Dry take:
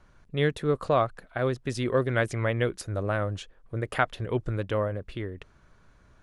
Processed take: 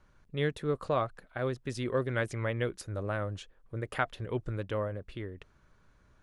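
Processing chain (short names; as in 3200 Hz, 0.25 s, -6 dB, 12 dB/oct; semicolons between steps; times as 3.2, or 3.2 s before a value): notch 690 Hz, Q 17; gain -5.5 dB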